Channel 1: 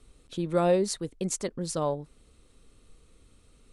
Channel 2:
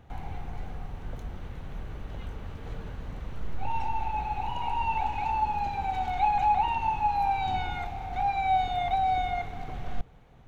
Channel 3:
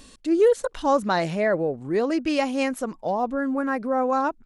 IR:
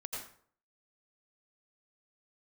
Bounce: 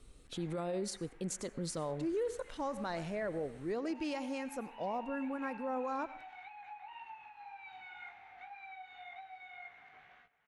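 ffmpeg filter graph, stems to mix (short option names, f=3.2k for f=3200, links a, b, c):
-filter_complex "[0:a]alimiter=limit=-21.5dB:level=0:latency=1:release=284,volume=-2dB,asplit=2[a][b];[b]volume=-20.5dB[c];[1:a]acompressor=threshold=-29dB:ratio=10,flanger=delay=17:depth=2.9:speed=1.9,bandpass=f=1.9k:t=q:w=2.2:csg=0,adelay=250,volume=-3.5dB,asplit=2[d][e];[e]volume=-15dB[f];[2:a]adelay=1750,volume=-13.5dB,asplit=2[g][h];[h]volume=-15dB[i];[a][g]amix=inputs=2:normalize=0,alimiter=level_in=7dB:limit=-24dB:level=0:latency=1:release=51,volume=-7dB,volume=0dB[j];[3:a]atrim=start_sample=2205[k];[c][f][i]amix=inputs=3:normalize=0[l];[l][k]afir=irnorm=-1:irlink=0[m];[d][j][m]amix=inputs=3:normalize=0"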